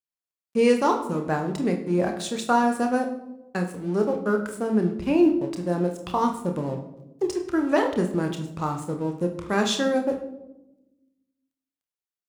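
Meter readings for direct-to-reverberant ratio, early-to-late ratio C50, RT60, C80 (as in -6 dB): 4.0 dB, 8.5 dB, 0.95 s, 12.0 dB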